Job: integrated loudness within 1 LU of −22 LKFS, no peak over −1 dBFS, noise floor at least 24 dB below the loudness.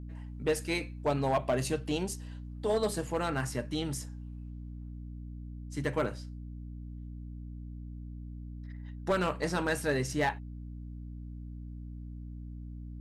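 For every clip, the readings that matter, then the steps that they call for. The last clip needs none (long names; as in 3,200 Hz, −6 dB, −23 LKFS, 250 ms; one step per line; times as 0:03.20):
share of clipped samples 0.4%; peaks flattened at −21.5 dBFS; mains hum 60 Hz; hum harmonics up to 300 Hz; level of the hum −40 dBFS; integrated loudness −35.5 LKFS; sample peak −21.5 dBFS; target loudness −22.0 LKFS
→ clipped peaks rebuilt −21.5 dBFS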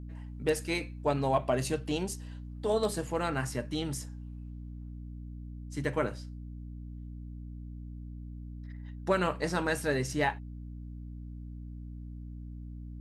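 share of clipped samples 0.0%; mains hum 60 Hz; hum harmonics up to 300 Hz; level of the hum −40 dBFS
→ hum removal 60 Hz, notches 5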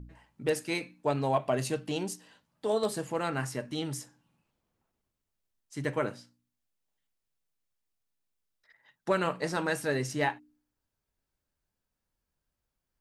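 mains hum none found; integrated loudness −32.0 LKFS; sample peak −13.5 dBFS; target loudness −22.0 LKFS
→ level +10 dB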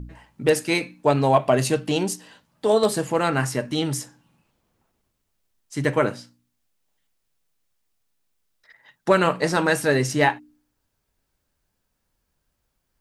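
integrated loudness −22.0 LKFS; sample peak −3.5 dBFS; background noise floor −76 dBFS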